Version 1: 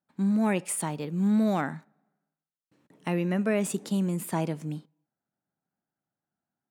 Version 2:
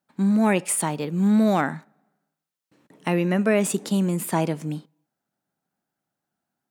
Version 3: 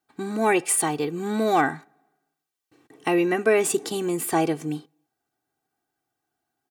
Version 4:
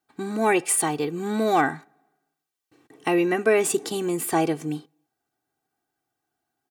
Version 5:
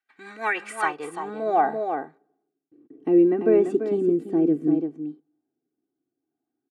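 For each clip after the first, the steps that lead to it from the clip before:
low-shelf EQ 150 Hz −6 dB; level +7 dB
comb filter 2.6 ms, depth 83%
no processing that can be heard
single-tap delay 340 ms −7.5 dB; band-pass filter sweep 2,000 Hz → 290 Hz, 0:00.34–0:02.72; rotating-speaker cabinet horn 6 Hz, later 0.65 Hz, at 0:00.51; level +8.5 dB

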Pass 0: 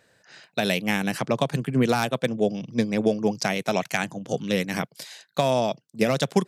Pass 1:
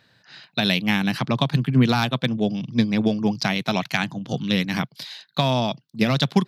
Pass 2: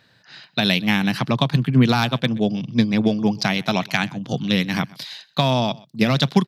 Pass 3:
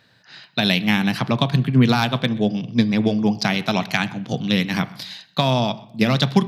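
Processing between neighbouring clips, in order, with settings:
graphic EQ with 10 bands 125 Hz +7 dB, 250 Hz +4 dB, 500 Hz −7 dB, 1,000 Hz +4 dB, 4,000 Hz +11 dB, 8,000 Hz −12 dB
single-tap delay 126 ms −23.5 dB; level +2 dB
convolution reverb RT60 0.75 s, pre-delay 4 ms, DRR 14 dB

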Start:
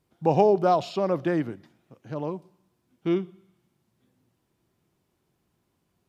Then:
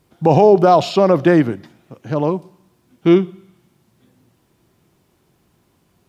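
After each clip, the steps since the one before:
boost into a limiter +14 dB
level −1 dB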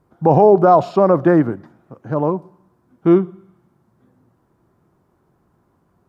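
high shelf with overshoot 1,900 Hz −12 dB, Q 1.5
level −1 dB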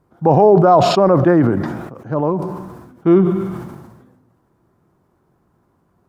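level that may fall only so fast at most 44 dB per second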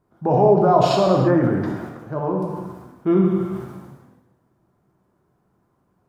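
reverb whose tail is shaped and stops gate 370 ms falling, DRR 0 dB
level −7.5 dB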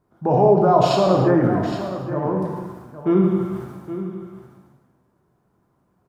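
single-tap delay 817 ms −12 dB

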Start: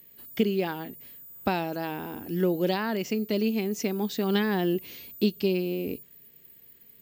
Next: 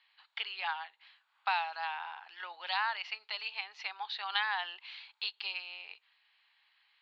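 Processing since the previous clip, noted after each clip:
Chebyshev band-pass filter 830–4,300 Hz, order 4
level +1.5 dB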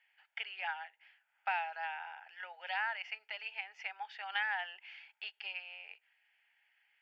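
phaser with its sweep stopped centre 1,100 Hz, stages 6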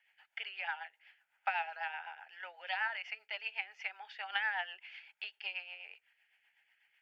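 rotating-speaker cabinet horn 8 Hz
level +3.5 dB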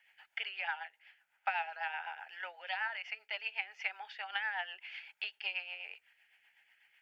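speech leveller within 4 dB 0.5 s
level +1 dB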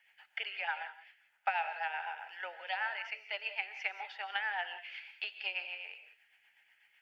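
reverb whose tail is shaped and stops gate 210 ms rising, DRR 10 dB
dynamic equaliser 430 Hz, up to +6 dB, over −55 dBFS, Q 0.92

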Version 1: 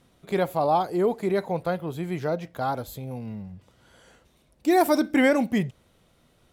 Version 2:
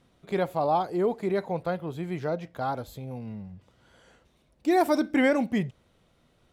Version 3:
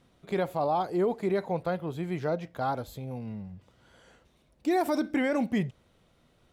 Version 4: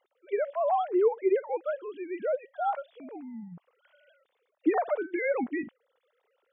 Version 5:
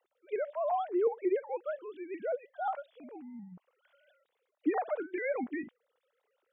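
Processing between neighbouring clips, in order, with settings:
high-shelf EQ 9,300 Hz −11 dB; level −2.5 dB
brickwall limiter −19 dBFS, peak gain reduction 7 dB
three sine waves on the formant tracks
pitch modulation by a square or saw wave saw up 5.6 Hz, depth 100 cents; level −5 dB

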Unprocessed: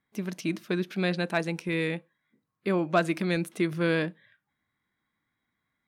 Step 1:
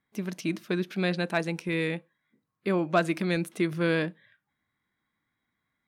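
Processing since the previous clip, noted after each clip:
no processing that can be heard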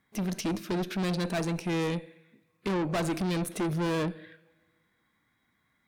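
coupled-rooms reverb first 0.68 s, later 1.8 s, from −20 dB, DRR 19 dB
dynamic equaliser 2,100 Hz, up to −7 dB, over −45 dBFS, Q 0.88
tube saturation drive 35 dB, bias 0.35
level +8.5 dB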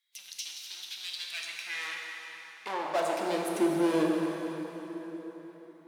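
high-pass filter sweep 3,600 Hz → 310 Hz, 0:00.99–0:03.67
dense smooth reverb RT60 4.3 s, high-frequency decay 0.75×, DRR −1 dB
level −4 dB

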